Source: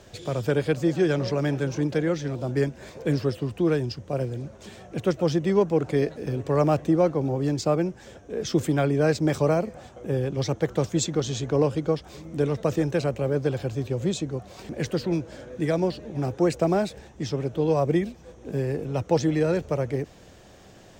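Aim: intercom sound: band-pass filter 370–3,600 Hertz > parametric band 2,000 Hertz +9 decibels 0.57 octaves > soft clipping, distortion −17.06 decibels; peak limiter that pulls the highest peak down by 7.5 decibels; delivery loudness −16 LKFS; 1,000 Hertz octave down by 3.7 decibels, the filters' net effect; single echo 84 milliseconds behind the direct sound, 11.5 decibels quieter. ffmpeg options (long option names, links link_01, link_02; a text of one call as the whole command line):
ffmpeg -i in.wav -af "equalizer=frequency=1000:width_type=o:gain=-6,alimiter=limit=-18dB:level=0:latency=1,highpass=370,lowpass=3600,equalizer=frequency=2000:width_type=o:width=0.57:gain=9,aecho=1:1:84:0.266,asoftclip=threshold=-24.5dB,volume=18.5dB" out.wav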